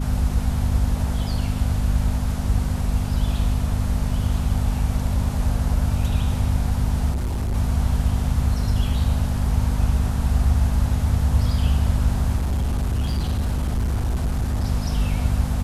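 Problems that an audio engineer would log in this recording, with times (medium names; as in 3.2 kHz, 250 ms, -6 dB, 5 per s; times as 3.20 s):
hum 50 Hz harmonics 5 -25 dBFS
7.11–7.54 s: clipped -20.5 dBFS
12.36–14.65 s: clipped -18.5 dBFS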